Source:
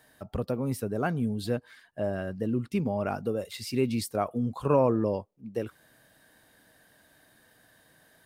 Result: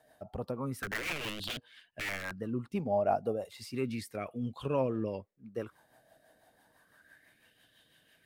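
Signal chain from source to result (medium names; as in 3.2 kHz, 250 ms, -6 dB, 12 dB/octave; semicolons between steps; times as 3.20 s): 0.82–2.35 s: integer overflow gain 27.5 dB; rotary cabinet horn 6 Hz; sweeping bell 0.32 Hz 670–3200 Hz +15 dB; trim -6 dB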